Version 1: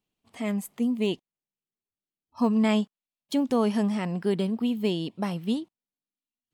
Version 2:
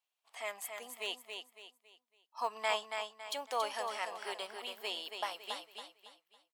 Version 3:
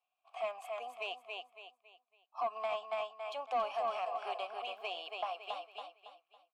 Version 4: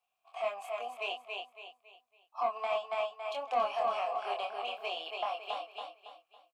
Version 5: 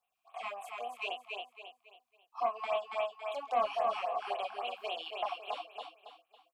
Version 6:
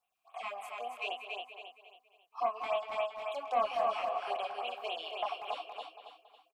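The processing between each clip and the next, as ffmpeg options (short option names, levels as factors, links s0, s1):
-filter_complex "[0:a]highpass=f=680:w=0.5412,highpass=f=680:w=1.3066,asplit=2[s0][s1];[s1]aecho=0:1:278|556|834|1112:0.501|0.18|0.065|0.0234[s2];[s0][s2]amix=inputs=2:normalize=0,volume=0.794"
-filter_complex "[0:a]alimiter=level_in=1.78:limit=0.0631:level=0:latency=1:release=159,volume=0.562,asplit=3[s0][s1][s2];[s0]bandpass=f=730:t=q:w=8,volume=1[s3];[s1]bandpass=f=1090:t=q:w=8,volume=0.501[s4];[s2]bandpass=f=2440:t=q:w=8,volume=0.355[s5];[s3][s4][s5]amix=inputs=3:normalize=0,asoftclip=type=tanh:threshold=0.01,volume=5.01"
-filter_complex "[0:a]asplit=2[s0][s1];[s1]adelay=25,volume=0.708[s2];[s0][s2]amix=inputs=2:normalize=0,volume=1.26"
-af "afftfilt=real='re*(1-between(b*sr/1024,460*pow(6100/460,0.5+0.5*sin(2*PI*3.7*pts/sr))/1.41,460*pow(6100/460,0.5+0.5*sin(2*PI*3.7*pts/sr))*1.41))':imag='im*(1-between(b*sr/1024,460*pow(6100/460,0.5+0.5*sin(2*PI*3.7*pts/sr))/1.41,460*pow(6100/460,0.5+0.5*sin(2*PI*3.7*pts/sr))*1.41))':win_size=1024:overlap=0.75"
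-filter_complex "[0:a]asplit=2[s0][s1];[s1]adelay=190,highpass=300,lowpass=3400,asoftclip=type=hard:threshold=0.0355,volume=0.355[s2];[s0][s2]amix=inputs=2:normalize=0"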